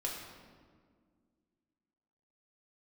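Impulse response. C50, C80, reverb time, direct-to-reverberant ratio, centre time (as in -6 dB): 3.0 dB, 4.5 dB, 1.8 s, -2.5 dB, 62 ms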